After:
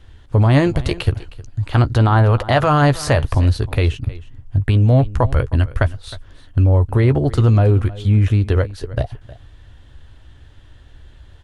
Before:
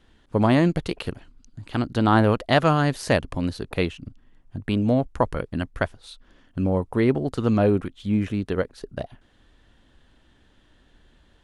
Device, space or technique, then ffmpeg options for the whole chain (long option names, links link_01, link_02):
car stereo with a boomy subwoofer: -filter_complex "[0:a]asettb=1/sr,asplit=3[link_01][link_02][link_03];[link_01]atrim=end=1.624[link_04];[link_02]atrim=start=1.62:end=3.38,asetpts=PTS-STARTPTS,afade=type=in:duration=0.004:curve=qsin,afade=type=out:start_time=1.756:duration=0.004:curve=qsin,equalizer=frequency=930:width=0.57:gain=5.5[link_05];[link_03]atrim=start=3.376[link_06];[link_04][link_05]acrossfade=duration=0.004:curve1=hsin:curve2=qsin[link_07];[link_07][link_06]acrossfade=duration=0.004:curve1=qsin:curve2=hsin,lowshelf=frequency=140:width_type=q:width=3:gain=8,alimiter=limit=-12.5dB:level=0:latency=1:release=37,asplit=2[link_08][link_09];[link_09]adelay=14,volume=-12dB[link_10];[link_08][link_10]amix=inputs=2:normalize=0,aecho=1:1:313:0.119,volume=7dB"